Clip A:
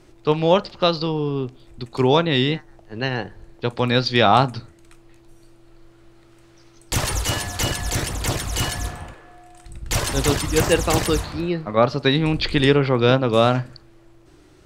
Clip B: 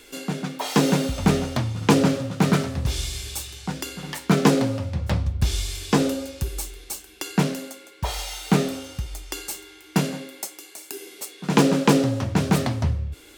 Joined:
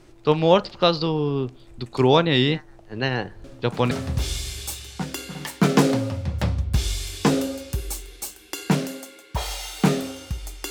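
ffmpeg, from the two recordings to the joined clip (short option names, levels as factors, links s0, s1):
-filter_complex "[1:a]asplit=2[s0][s1];[0:a]apad=whole_dur=10.7,atrim=end=10.7,atrim=end=3.912[s2];[s1]atrim=start=2.588:end=9.38[s3];[s0]atrim=start=2.12:end=2.59,asetpts=PTS-STARTPTS,volume=0.126,afade=t=in:d=0.004:c=hsin,afade=t=out:st=0.466:d=0.004:c=hsin,adelay=3440[s4];[s2][s3]acrossfade=d=0.004:c1=hsin:c2=hsin[s5];[s5][s4]amix=inputs=2:normalize=0"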